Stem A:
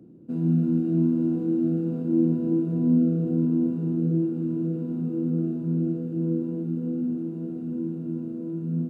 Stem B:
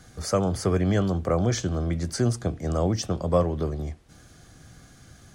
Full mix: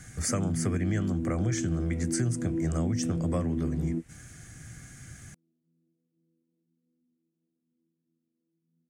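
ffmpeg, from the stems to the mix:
-filter_complex "[0:a]alimiter=limit=-18.5dB:level=0:latency=1,volume=-1dB[a];[1:a]equalizer=f=125:t=o:w=1:g=6,equalizer=f=500:t=o:w=1:g=-5,equalizer=f=1k:t=o:w=1:g=-6,equalizer=f=2k:t=o:w=1:g=10,equalizer=f=4k:t=o:w=1:g=-9,equalizer=f=8k:t=o:w=1:g=11,volume=0dB,asplit=2[b][c];[c]apad=whole_len=392388[d];[a][d]sidechaingate=range=-48dB:threshold=-38dB:ratio=16:detection=peak[e];[e][b]amix=inputs=2:normalize=0,acompressor=threshold=-26dB:ratio=4"

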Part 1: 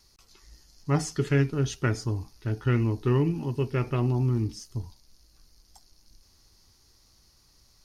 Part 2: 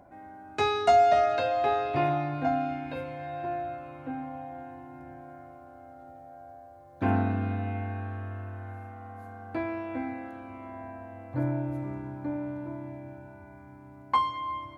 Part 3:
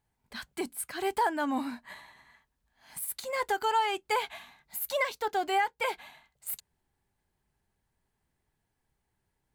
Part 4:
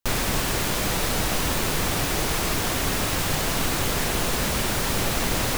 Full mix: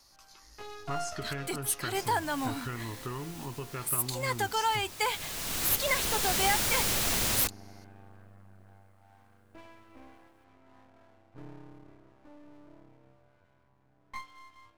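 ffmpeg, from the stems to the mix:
-filter_complex "[0:a]equalizer=f=1.1k:t=o:w=1.2:g=11,acompressor=threshold=-28dB:ratio=6,volume=-8dB,asplit=2[a][b];[1:a]highshelf=f=2.2k:g=-12,flanger=delay=17.5:depth=4.8:speed=0.26,aeval=exprs='max(val(0),0)':c=same,volume=-11.5dB[c];[2:a]adelay=900,volume=-3.5dB[d];[3:a]adelay=1900,volume=-9.5dB[e];[b]apad=whole_len=329520[f];[e][f]sidechaincompress=threshold=-56dB:ratio=12:attack=5.5:release=724[g];[a][c][d][g]amix=inputs=4:normalize=0,highshelf=f=2.3k:g=10"

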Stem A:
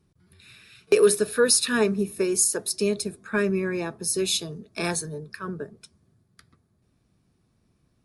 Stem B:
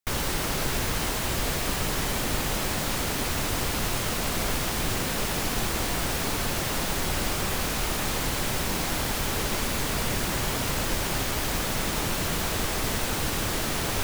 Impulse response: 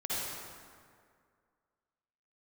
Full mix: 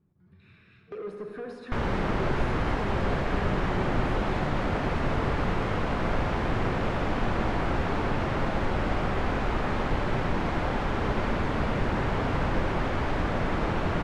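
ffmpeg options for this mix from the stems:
-filter_complex "[0:a]equalizer=f=190:w=1.5:g=6,acompressor=threshold=-26dB:ratio=6,asoftclip=type=tanh:threshold=-31.5dB,volume=-8.5dB,asplit=2[a][b];[b]volume=-6dB[c];[1:a]adelay=1650,volume=-3.5dB,asplit=2[d][e];[e]volume=-10dB[f];[2:a]atrim=start_sample=2205[g];[c][f]amix=inputs=2:normalize=0[h];[h][g]afir=irnorm=-1:irlink=0[i];[a][d][i]amix=inputs=3:normalize=0,lowpass=1.7k,dynaudnorm=f=150:g=3:m=3.5dB"

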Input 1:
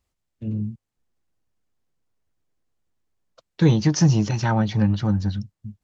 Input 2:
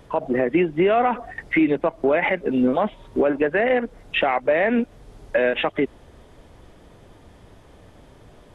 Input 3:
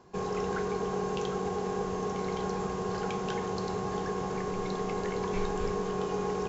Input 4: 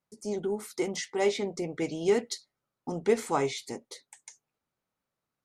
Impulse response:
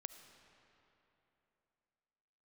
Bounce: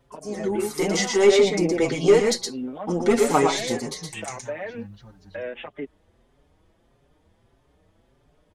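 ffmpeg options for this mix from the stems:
-filter_complex "[0:a]tiltshelf=f=970:g=-4,volume=-18dB[a];[1:a]volume=-11dB[b];[2:a]lowpass=2.4k,volume=-13.5dB[c];[3:a]dynaudnorm=f=160:g=7:m=10.5dB,aeval=exprs='(tanh(2.51*val(0)+0.15)-tanh(0.15))/2.51':c=same,volume=3dB,asplit=3[d][e][f];[e]volume=-4dB[g];[f]apad=whole_len=286117[h];[c][h]sidechaingate=range=-33dB:threshold=-45dB:ratio=16:detection=peak[i];[g]aecho=0:1:117:1[j];[a][b][i][d][j]amix=inputs=5:normalize=0,asplit=2[k][l];[l]adelay=5.4,afreqshift=1.6[m];[k][m]amix=inputs=2:normalize=1"

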